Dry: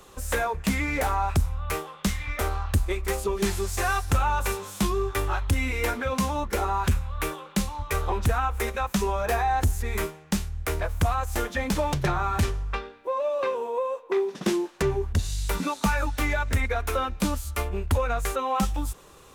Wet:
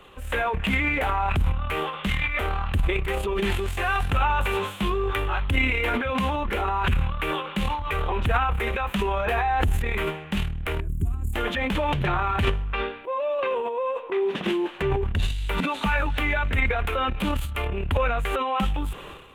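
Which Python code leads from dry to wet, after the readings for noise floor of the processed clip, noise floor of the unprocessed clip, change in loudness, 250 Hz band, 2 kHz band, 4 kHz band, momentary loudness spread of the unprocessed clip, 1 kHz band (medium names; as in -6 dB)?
-39 dBFS, -50 dBFS, +1.5 dB, 0.0 dB, +4.5 dB, +3.5 dB, 5 LU, +1.5 dB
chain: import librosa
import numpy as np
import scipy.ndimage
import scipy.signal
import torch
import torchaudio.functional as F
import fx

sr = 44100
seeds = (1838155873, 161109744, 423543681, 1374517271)

y = fx.transient(x, sr, attack_db=-3, sustain_db=11)
y = fx.spec_box(y, sr, start_s=10.8, length_s=0.54, low_hz=420.0, high_hz=6600.0, gain_db=-27)
y = fx.high_shelf_res(y, sr, hz=4000.0, db=-10.5, q=3.0)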